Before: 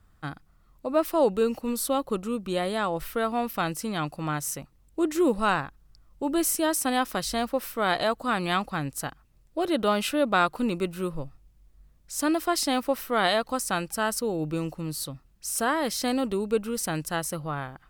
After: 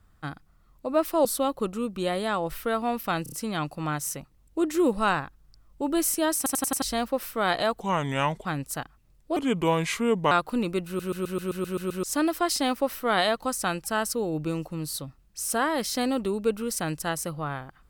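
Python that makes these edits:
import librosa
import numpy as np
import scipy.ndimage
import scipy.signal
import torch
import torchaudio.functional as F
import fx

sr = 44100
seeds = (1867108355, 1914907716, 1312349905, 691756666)

y = fx.edit(x, sr, fx.cut(start_s=1.25, length_s=0.5),
    fx.stutter(start_s=3.73, slice_s=0.03, count=4),
    fx.stutter_over(start_s=6.78, slice_s=0.09, count=5),
    fx.speed_span(start_s=8.21, length_s=0.51, speed=0.78),
    fx.speed_span(start_s=9.63, length_s=0.75, speed=0.79),
    fx.stutter_over(start_s=10.93, slice_s=0.13, count=9), tone=tone)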